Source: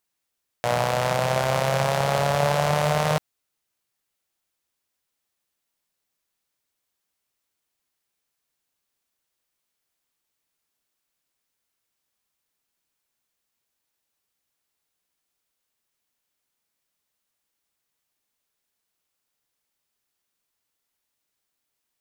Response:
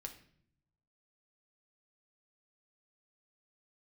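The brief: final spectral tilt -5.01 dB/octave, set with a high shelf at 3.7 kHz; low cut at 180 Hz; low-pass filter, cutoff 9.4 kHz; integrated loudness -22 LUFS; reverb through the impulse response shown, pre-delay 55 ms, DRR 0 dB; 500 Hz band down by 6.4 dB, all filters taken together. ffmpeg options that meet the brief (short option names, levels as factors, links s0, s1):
-filter_complex "[0:a]highpass=180,lowpass=9400,equalizer=f=500:t=o:g=-8,highshelf=f=3700:g=-9,asplit=2[s0][s1];[1:a]atrim=start_sample=2205,adelay=55[s2];[s1][s2]afir=irnorm=-1:irlink=0,volume=1.58[s3];[s0][s3]amix=inputs=2:normalize=0,volume=1.33"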